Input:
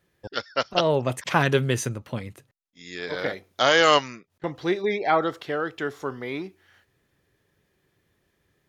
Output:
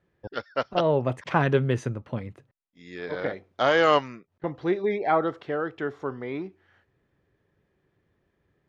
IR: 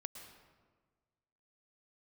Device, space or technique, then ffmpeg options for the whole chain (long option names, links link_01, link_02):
through cloth: -af "lowpass=8300,highshelf=frequency=3200:gain=-18"